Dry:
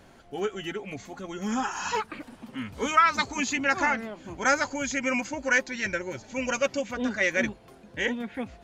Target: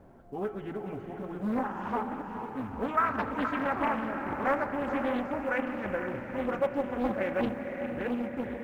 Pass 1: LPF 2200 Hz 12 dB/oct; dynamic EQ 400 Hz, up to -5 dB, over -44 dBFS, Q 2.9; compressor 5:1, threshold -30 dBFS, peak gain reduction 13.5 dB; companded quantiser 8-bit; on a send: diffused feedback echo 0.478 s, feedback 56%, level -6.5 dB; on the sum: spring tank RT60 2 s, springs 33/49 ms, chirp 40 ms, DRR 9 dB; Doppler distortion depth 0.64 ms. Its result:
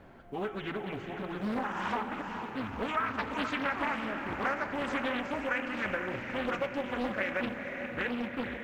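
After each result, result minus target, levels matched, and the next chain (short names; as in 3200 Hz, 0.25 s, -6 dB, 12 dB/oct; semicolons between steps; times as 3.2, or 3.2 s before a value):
compressor: peak gain reduction +13.5 dB; 2000 Hz band +4.5 dB
LPF 2200 Hz 12 dB/oct; dynamic EQ 400 Hz, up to -5 dB, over -44 dBFS, Q 2.9; companded quantiser 8-bit; on a send: diffused feedback echo 0.478 s, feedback 56%, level -6.5 dB; on the sum: spring tank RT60 2 s, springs 33/49 ms, chirp 40 ms, DRR 9 dB; Doppler distortion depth 0.64 ms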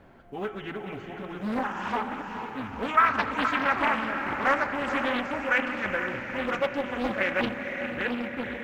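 2000 Hz band +5.0 dB
LPF 930 Hz 12 dB/oct; dynamic EQ 400 Hz, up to -5 dB, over -44 dBFS, Q 2.9; companded quantiser 8-bit; on a send: diffused feedback echo 0.478 s, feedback 56%, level -6.5 dB; on the sum: spring tank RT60 2 s, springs 33/49 ms, chirp 40 ms, DRR 9 dB; Doppler distortion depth 0.64 ms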